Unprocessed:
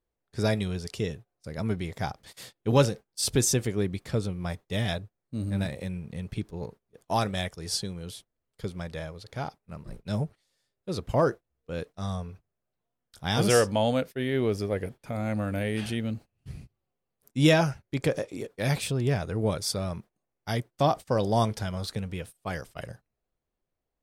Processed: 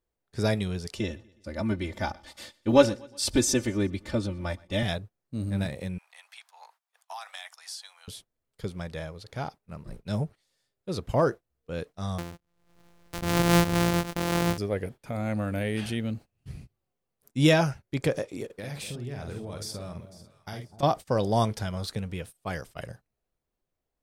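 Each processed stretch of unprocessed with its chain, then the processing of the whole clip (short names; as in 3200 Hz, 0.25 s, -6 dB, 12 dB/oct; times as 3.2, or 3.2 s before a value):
0.95–4.83 high shelf 9200 Hz -12 dB + comb 3.4 ms, depth 98% + feedback echo 0.122 s, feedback 51%, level -24 dB
5.98–8.08 steep high-pass 750 Hz 48 dB/oct + compressor, threshold -36 dBFS
12.18–14.58 sample sorter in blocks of 256 samples + gate -49 dBFS, range -14 dB + backwards sustainer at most 62 dB/s
18.45–20.83 compressor 10:1, threshold -34 dBFS + doubler 49 ms -5.5 dB + echo with dull and thin repeats by turns 0.249 s, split 850 Hz, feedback 54%, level -12 dB
whole clip: dry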